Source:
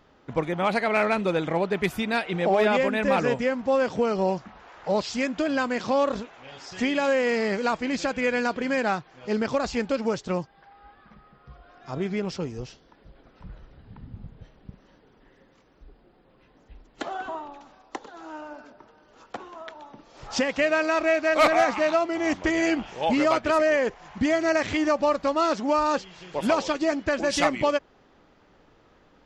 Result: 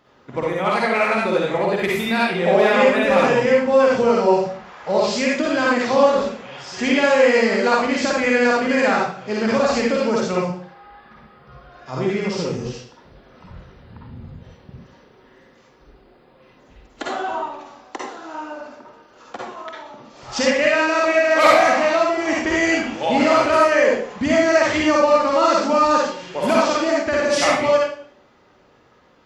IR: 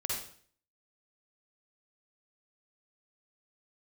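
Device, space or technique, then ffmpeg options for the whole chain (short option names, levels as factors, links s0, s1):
far laptop microphone: -filter_complex "[1:a]atrim=start_sample=2205[s0];[0:a][s0]afir=irnorm=-1:irlink=0,highpass=f=170:p=1,dynaudnorm=f=280:g=17:m=1.41,volume=1.26"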